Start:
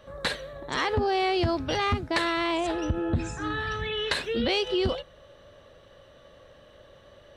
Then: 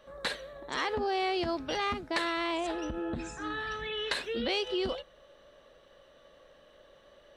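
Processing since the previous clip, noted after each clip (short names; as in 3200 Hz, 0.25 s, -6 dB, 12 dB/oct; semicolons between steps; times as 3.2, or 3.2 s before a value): bell 95 Hz -14.5 dB 1.2 oct; gain -4.5 dB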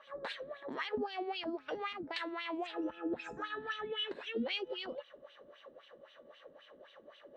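compressor, threshold -38 dBFS, peak gain reduction 11.5 dB; wah 3.8 Hz 240–3200 Hz, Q 2.6; gain +9.5 dB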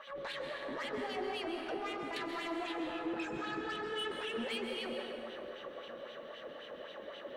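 in parallel at -2.5 dB: negative-ratio compressor -50 dBFS, ratio -1; on the sum: soft clip -34 dBFS, distortion -14 dB; plate-style reverb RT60 3.4 s, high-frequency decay 0.45×, pre-delay 0.115 s, DRR 1 dB; gain -1 dB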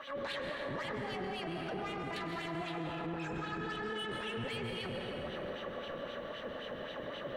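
octaver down 1 oct, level +2 dB; limiter -36 dBFS, peak gain reduction 10 dB; band-limited delay 0.1 s, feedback 73%, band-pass 1100 Hz, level -7 dB; gain +4 dB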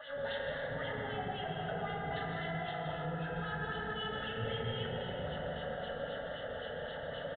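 fixed phaser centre 1600 Hz, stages 8; FDN reverb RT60 2.1 s, low-frequency decay 1.35×, high-frequency decay 0.3×, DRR -2 dB; downsampling 8000 Hz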